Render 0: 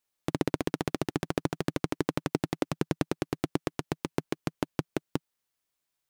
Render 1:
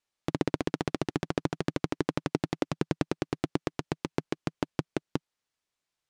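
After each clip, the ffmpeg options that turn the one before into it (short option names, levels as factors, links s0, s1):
-af "lowpass=7200"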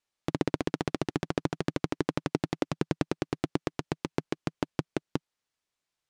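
-af anull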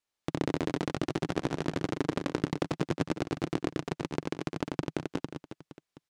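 -af "aecho=1:1:90|207|359.1|556.8|813.9:0.631|0.398|0.251|0.158|0.1,volume=0.75"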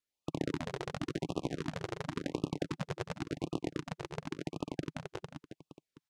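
-af "afftfilt=real='re*(1-between(b*sr/1024,230*pow(1800/230,0.5+0.5*sin(2*PI*0.92*pts/sr))/1.41,230*pow(1800/230,0.5+0.5*sin(2*PI*0.92*pts/sr))*1.41))':imag='im*(1-between(b*sr/1024,230*pow(1800/230,0.5+0.5*sin(2*PI*0.92*pts/sr))/1.41,230*pow(1800/230,0.5+0.5*sin(2*PI*0.92*pts/sr))*1.41))':win_size=1024:overlap=0.75,volume=0.596"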